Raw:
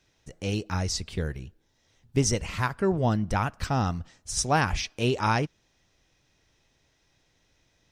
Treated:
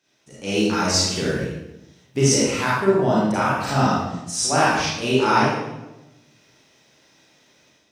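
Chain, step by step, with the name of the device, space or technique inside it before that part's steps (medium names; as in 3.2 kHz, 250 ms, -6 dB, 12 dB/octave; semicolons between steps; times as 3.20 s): far laptop microphone (reverberation RT60 0.95 s, pre-delay 30 ms, DRR -8 dB; high-pass 200 Hz 12 dB/octave; level rider gain up to 8 dB); trim -3.5 dB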